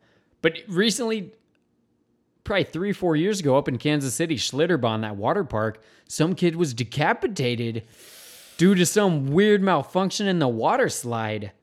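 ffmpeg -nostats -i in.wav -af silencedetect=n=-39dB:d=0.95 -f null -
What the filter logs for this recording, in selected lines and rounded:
silence_start: 1.29
silence_end: 2.46 | silence_duration: 1.17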